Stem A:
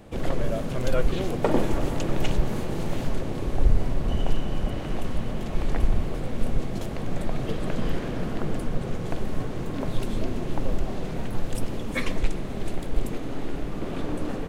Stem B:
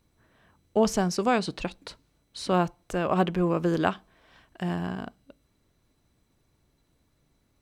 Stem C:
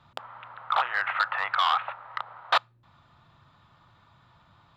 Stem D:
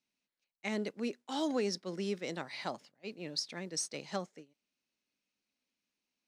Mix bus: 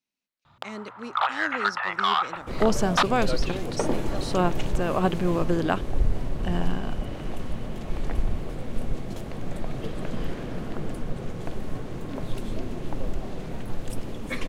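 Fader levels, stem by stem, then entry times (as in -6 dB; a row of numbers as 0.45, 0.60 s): -3.5, 0.0, +0.5, -2.0 dB; 2.35, 1.85, 0.45, 0.00 s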